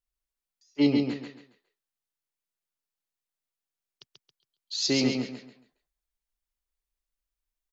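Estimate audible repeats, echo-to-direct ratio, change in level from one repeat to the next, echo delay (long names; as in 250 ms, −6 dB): 4, −3.5 dB, −10.0 dB, 137 ms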